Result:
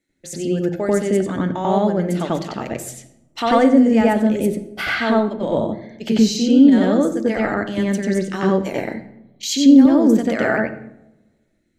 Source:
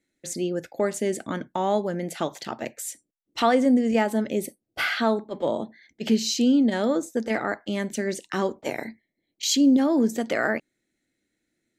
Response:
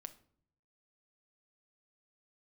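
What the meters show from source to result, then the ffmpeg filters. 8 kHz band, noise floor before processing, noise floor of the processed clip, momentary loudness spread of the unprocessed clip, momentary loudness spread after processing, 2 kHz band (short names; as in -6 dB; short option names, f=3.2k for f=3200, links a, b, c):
+1.5 dB, -80 dBFS, -65 dBFS, 14 LU, 16 LU, +4.5 dB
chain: -filter_complex "[0:a]asplit=2[a][b];[b]aemphasis=mode=reproduction:type=bsi[c];[1:a]atrim=start_sample=2205,asetrate=25137,aresample=44100,adelay=92[d];[c][d]afir=irnorm=-1:irlink=0,volume=6dB[e];[a][e]amix=inputs=2:normalize=0"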